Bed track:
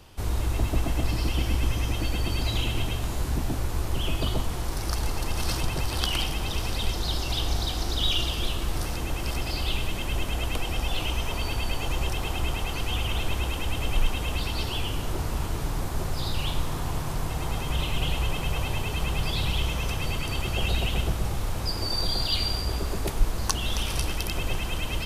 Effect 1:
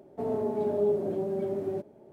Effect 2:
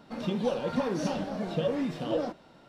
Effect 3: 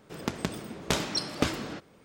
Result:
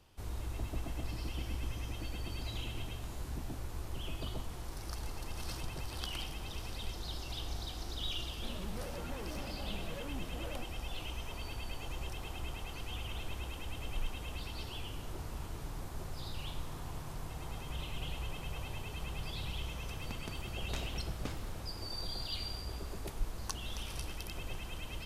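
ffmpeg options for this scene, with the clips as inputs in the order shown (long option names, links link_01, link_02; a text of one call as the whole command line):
ffmpeg -i bed.wav -i cue0.wav -i cue1.wav -i cue2.wav -filter_complex "[0:a]volume=-13.5dB[link_01];[2:a]asoftclip=type=hard:threshold=-33.5dB,atrim=end=2.68,asetpts=PTS-STARTPTS,volume=-10dB,afade=type=in:duration=0.004:curve=hsin,afade=type=out:start_time=2.676:duration=0.004:curve=hsin,adelay=8320[link_02];[3:a]atrim=end=2.04,asetpts=PTS-STARTPTS,volume=-16.5dB,afade=type=in:duration=0.004:curve=hsin,afade=type=out:start_time=2.036:duration=0.004:curve=hsin,adelay=19830[link_03];[link_01][link_02][link_03]amix=inputs=3:normalize=0" out.wav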